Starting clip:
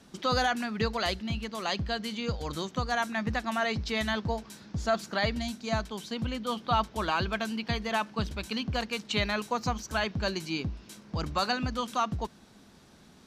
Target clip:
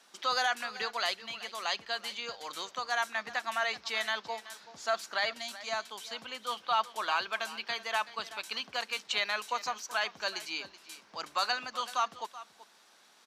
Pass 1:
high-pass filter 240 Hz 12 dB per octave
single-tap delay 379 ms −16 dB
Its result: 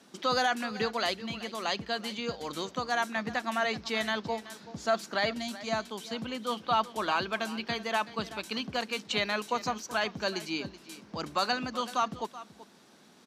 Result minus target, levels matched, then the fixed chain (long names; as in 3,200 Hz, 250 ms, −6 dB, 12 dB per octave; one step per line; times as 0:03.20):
250 Hz band +15.5 dB
high-pass filter 790 Hz 12 dB per octave
single-tap delay 379 ms −16 dB